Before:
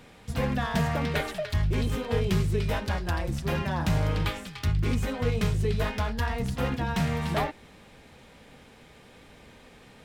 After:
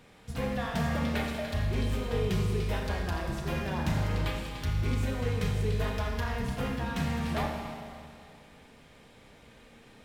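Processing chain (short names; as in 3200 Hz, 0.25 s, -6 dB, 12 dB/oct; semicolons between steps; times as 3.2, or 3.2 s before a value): Schroeder reverb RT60 2.4 s, combs from 27 ms, DRR 1.5 dB; gain -5.5 dB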